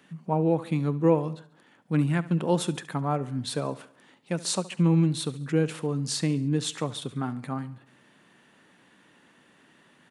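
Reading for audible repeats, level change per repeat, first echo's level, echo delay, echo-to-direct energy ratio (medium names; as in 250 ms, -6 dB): 3, -5.5 dB, -18.0 dB, 70 ms, -16.5 dB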